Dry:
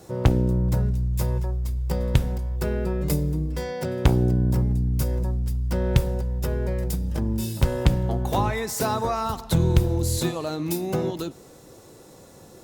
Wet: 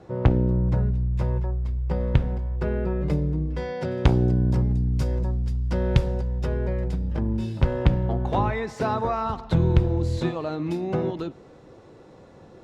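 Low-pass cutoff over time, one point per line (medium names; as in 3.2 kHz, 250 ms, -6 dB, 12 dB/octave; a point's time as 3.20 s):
3.34 s 2.4 kHz
4.00 s 4.8 kHz
6.21 s 4.8 kHz
6.83 s 2.7 kHz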